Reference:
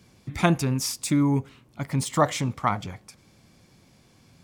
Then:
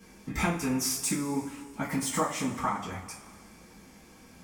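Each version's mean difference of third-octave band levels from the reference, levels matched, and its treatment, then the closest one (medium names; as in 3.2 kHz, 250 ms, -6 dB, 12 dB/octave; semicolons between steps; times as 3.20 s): 10.0 dB: graphic EQ 125/500/4000 Hz -11/-4/-9 dB; compression, threshold -34 dBFS, peak gain reduction 15.5 dB; two-slope reverb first 0.28 s, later 2 s, from -18 dB, DRR -8 dB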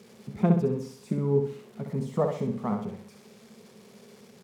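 7.5 dB: zero-crossing glitches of -20 dBFS; two resonant band-passes 300 Hz, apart 0.94 oct; feedback delay 64 ms, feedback 39%, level -5.5 dB; trim +8.5 dB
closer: second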